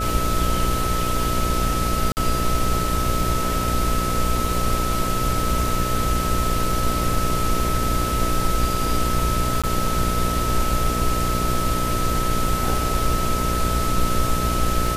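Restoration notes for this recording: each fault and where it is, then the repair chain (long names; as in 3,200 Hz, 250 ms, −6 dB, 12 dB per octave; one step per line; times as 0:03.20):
mains buzz 60 Hz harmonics 11 −26 dBFS
surface crackle 27 per second −28 dBFS
whistle 1,300 Hz −25 dBFS
0:02.12–0:02.17: drop-out 49 ms
0:09.62–0:09.64: drop-out 16 ms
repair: click removal
hum removal 60 Hz, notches 11
notch filter 1,300 Hz, Q 30
repair the gap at 0:02.12, 49 ms
repair the gap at 0:09.62, 16 ms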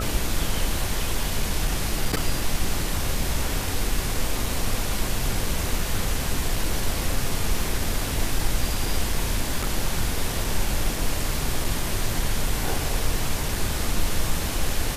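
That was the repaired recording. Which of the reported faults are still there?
none of them is left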